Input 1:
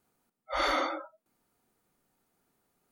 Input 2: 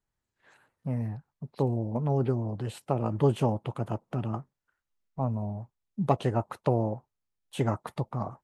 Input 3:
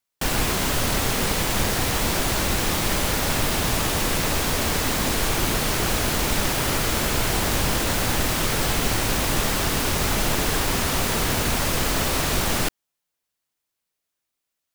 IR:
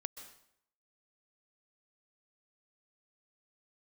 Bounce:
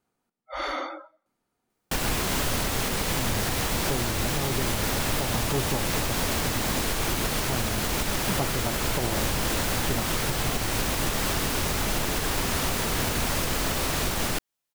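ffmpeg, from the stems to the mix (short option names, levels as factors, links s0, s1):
-filter_complex "[0:a]highshelf=f=11000:g=-11,volume=0.75,asplit=2[s0][s1];[s1]volume=0.0794[s2];[1:a]adelay=2300,volume=0.891[s3];[2:a]adelay=1700,volume=0.794[s4];[3:a]atrim=start_sample=2205[s5];[s2][s5]afir=irnorm=-1:irlink=0[s6];[s0][s3][s4][s6]amix=inputs=4:normalize=0,alimiter=limit=0.168:level=0:latency=1:release=178"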